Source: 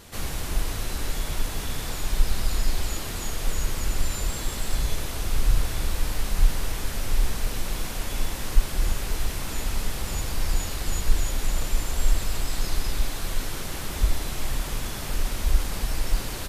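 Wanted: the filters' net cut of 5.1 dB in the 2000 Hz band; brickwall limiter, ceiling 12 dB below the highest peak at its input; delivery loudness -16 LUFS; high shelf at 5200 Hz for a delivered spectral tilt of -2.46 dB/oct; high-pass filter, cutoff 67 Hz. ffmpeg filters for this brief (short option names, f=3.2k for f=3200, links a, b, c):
-af "highpass=67,equalizer=f=2k:t=o:g=-7.5,highshelf=f=5.2k:g=5.5,volume=18.5dB,alimiter=limit=-8dB:level=0:latency=1"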